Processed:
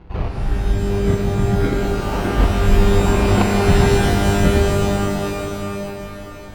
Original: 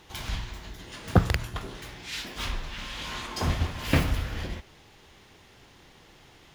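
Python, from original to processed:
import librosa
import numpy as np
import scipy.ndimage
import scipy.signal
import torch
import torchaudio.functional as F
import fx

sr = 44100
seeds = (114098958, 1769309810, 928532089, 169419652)

p1 = fx.quant_dither(x, sr, seeds[0], bits=8, dither='none')
p2 = x + F.gain(torch.from_numpy(p1), -7.0).numpy()
p3 = fx.tilt_eq(p2, sr, slope=-3.0)
p4 = fx.over_compress(p3, sr, threshold_db=-21.0, ratio=-0.5)
p5 = fx.noise_reduce_blind(p4, sr, reduce_db=9)
p6 = fx.sample_hold(p5, sr, seeds[1], rate_hz=1800.0, jitter_pct=0)
p7 = fx.air_absorb(p6, sr, metres=310.0)
p8 = fx.rev_shimmer(p7, sr, seeds[2], rt60_s=2.9, semitones=12, shimmer_db=-2, drr_db=0.5)
y = F.gain(torch.from_numpy(p8), 6.5).numpy()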